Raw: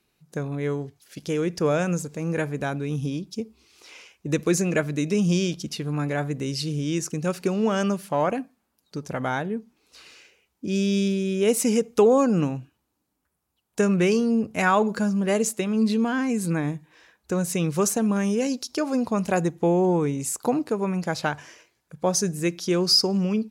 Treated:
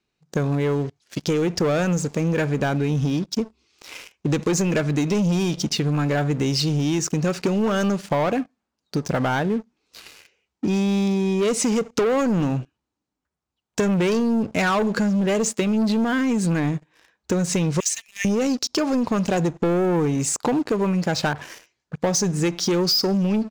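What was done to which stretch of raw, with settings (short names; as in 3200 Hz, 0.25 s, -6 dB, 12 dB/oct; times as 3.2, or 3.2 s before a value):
17.8–18.25 brick-wall FIR high-pass 1700 Hz
21.33–21.97 dispersion highs, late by 51 ms, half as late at 1600 Hz
whole clip: LPF 7500 Hz 24 dB/oct; sample leveller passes 3; compressor, threshold -19 dBFS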